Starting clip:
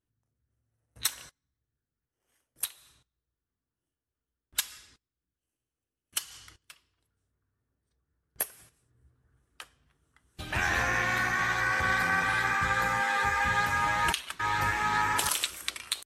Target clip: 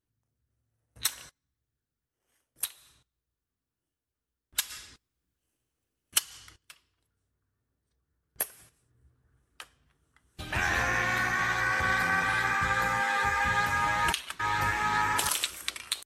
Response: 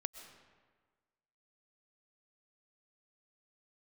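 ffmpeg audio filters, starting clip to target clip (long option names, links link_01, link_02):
-filter_complex "[0:a]asplit=3[link_01][link_02][link_03];[link_01]afade=type=out:start_time=4.69:duration=0.02[link_04];[link_02]acontrast=65,afade=type=in:start_time=4.69:duration=0.02,afade=type=out:start_time=6.18:duration=0.02[link_05];[link_03]afade=type=in:start_time=6.18:duration=0.02[link_06];[link_04][link_05][link_06]amix=inputs=3:normalize=0"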